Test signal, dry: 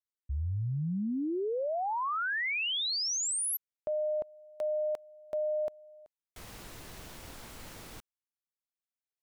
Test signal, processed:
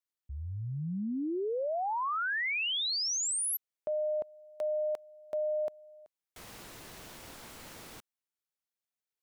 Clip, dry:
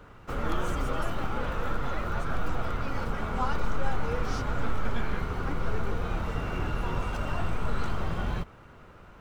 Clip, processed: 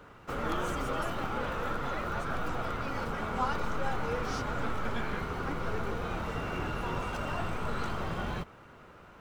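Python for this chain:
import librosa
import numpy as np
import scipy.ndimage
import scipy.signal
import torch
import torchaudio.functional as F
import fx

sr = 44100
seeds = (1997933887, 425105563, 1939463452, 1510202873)

y = fx.low_shelf(x, sr, hz=98.0, db=-10.5)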